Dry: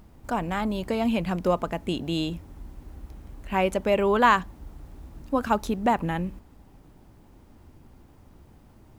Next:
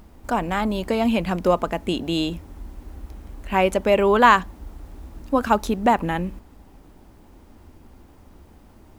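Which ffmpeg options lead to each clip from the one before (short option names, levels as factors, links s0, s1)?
-af "equalizer=f=130:t=o:w=0.56:g=-10,volume=1.78"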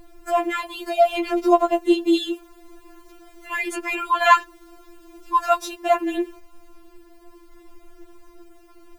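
-af "afftfilt=real='re*4*eq(mod(b,16),0)':imag='im*4*eq(mod(b,16),0)':win_size=2048:overlap=0.75,volume=1.58"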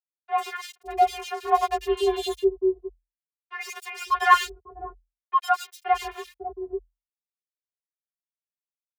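-filter_complex "[0:a]aeval=exprs='sgn(val(0))*max(abs(val(0))-0.0398,0)':c=same,afreqshift=42,acrossover=split=510|2500[s0][s1][s2];[s2]adelay=100[s3];[s0]adelay=550[s4];[s4][s1][s3]amix=inputs=3:normalize=0"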